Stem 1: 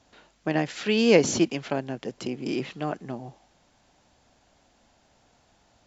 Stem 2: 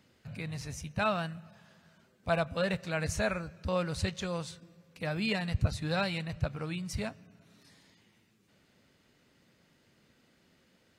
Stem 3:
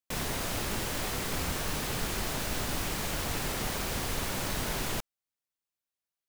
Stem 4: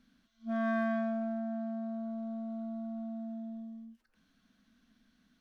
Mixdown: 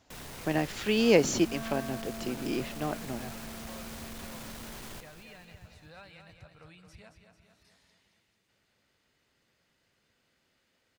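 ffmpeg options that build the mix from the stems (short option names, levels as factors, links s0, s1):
-filter_complex "[0:a]volume=0.668[s0];[1:a]acompressor=threshold=0.00794:ratio=4,equalizer=f=200:w=0.59:g=-8.5,acrossover=split=3000[s1][s2];[s2]acompressor=threshold=0.00178:ratio=4:attack=1:release=60[s3];[s1][s3]amix=inputs=2:normalize=0,volume=0.562,asplit=2[s4][s5];[s5]volume=0.422[s6];[2:a]asoftclip=type=hard:threshold=0.0237,volume=0.355,asplit=2[s7][s8];[s8]volume=0.282[s9];[3:a]adelay=1000,volume=0.376[s10];[s6][s9]amix=inputs=2:normalize=0,aecho=0:1:222|444|666|888|1110|1332|1554|1776:1|0.54|0.292|0.157|0.085|0.0459|0.0248|0.0134[s11];[s0][s4][s7][s10][s11]amix=inputs=5:normalize=0"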